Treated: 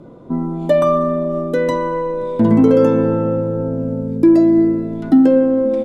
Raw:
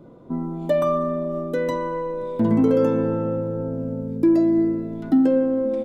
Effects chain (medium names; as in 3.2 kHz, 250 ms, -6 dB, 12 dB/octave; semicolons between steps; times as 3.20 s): low-pass 12 kHz 24 dB/octave; trim +6.5 dB